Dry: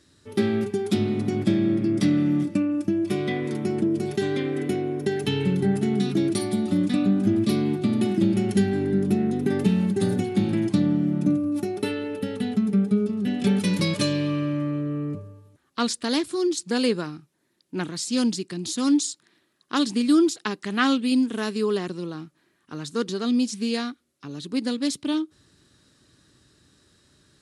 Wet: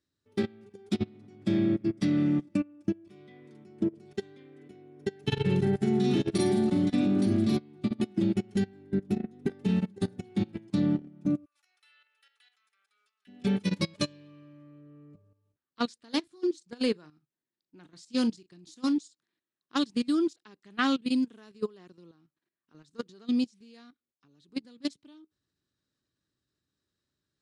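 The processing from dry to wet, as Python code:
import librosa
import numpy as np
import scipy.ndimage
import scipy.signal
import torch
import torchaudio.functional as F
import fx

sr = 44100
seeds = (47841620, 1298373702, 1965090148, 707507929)

y = fx.echo_multitap(x, sr, ms=(41, 49, 57, 109, 195, 869), db=(-4.5, -3.5, -20.0, -10.0, -18.0, -6.5), at=(5.23, 7.57))
y = fx.highpass(y, sr, hz=1300.0, slope=24, at=(11.44, 13.27), fade=0.02)
y = fx.doubler(y, sr, ms=39.0, db=-14.0, at=(16.0, 18.96))
y = scipy.signal.sosfilt(scipy.signal.butter(2, 7800.0, 'lowpass', fs=sr, output='sos'), y)
y = fx.level_steps(y, sr, step_db=11)
y = fx.upward_expand(y, sr, threshold_db=-33.0, expansion=2.5)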